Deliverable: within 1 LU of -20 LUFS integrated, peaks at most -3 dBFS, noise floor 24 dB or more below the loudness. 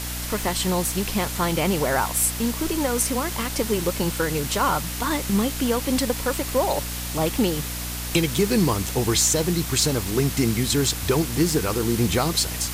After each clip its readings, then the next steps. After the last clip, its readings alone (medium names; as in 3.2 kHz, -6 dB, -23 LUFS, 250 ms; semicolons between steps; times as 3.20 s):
hum 60 Hz; highest harmonic 300 Hz; hum level -31 dBFS; noise floor -30 dBFS; noise floor target -47 dBFS; loudness -22.5 LUFS; peak level -7.5 dBFS; loudness target -20.0 LUFS
-> hum notches 60/120/180/240/300 Hz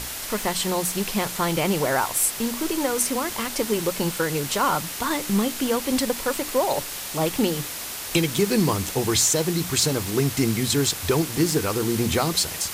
hum not found; noise floor -33 dBFS; noise floor target -47 dBFS
-> noise reduction 14 dB, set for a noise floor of -33 dBFS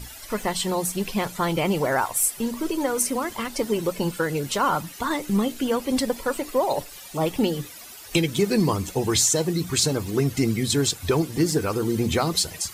noise floor -42 dBFS; noise floor target -48 dBFS
-> noise reduction 6 dB, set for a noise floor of -42 dBFS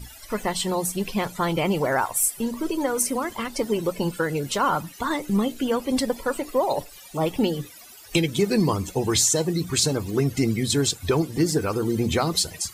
noise floor -45 dBFS; noise floor target -48 dBFS
-> noise reduction 6 dB, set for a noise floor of -45 dBFS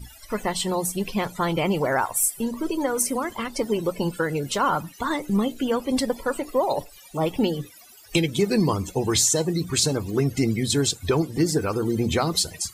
noise floor -48 dBFS; loudness -24.0 LUFS; peak level -8.0 dBFS; loudness target -20.0 LUFS
-> trim +4 dB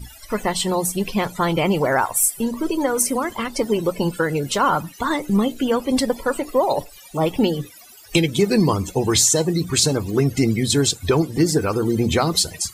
loudness -20.0 LUFS; peak level -4.0 dBFS; noise floor -44 dBFS